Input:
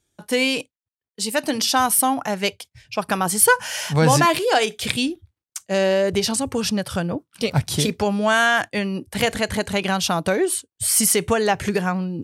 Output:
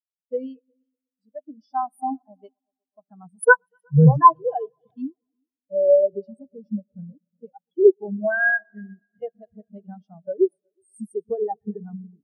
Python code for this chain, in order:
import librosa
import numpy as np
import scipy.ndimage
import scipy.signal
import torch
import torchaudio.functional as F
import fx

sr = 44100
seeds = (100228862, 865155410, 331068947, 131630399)

y = fx.sine_speech(x, sr, at=(7.49, 7.93))
y = fx.notch(y, sr, hz=2400.0, q=7.9)
y = fx.echo_heads(y, sr, ms=122, heads='all three', feedback_pct=65, wet_db=-15.0)
y = fx.spectral_expand(y, sr, expansion=4.0)